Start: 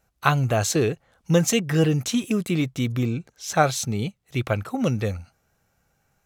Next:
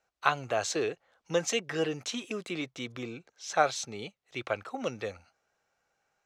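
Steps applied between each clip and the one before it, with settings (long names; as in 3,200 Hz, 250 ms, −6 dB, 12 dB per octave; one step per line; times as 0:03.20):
three-way crossover with the lows and the highs turned down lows −18 dB, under 340 Hz, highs −23 dB, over 7,400 Hz
level −5 dB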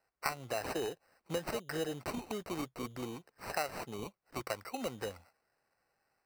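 downward compressor 3 to 1, threshold −32 dBFS, peak gain reduction 10.5 dB
decimation without filtering 13×
level −2 dB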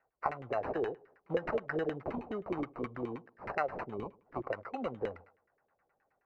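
delay with a low-pass on its return 78 ms, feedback 40%, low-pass 2,700 Hz, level −21.5 dB
auto-filter low-pass saw down 9.5 Hz 370–2,200 Hz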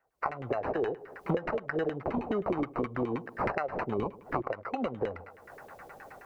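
camcorder AGC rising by 57 dB per second
level −1.5 dB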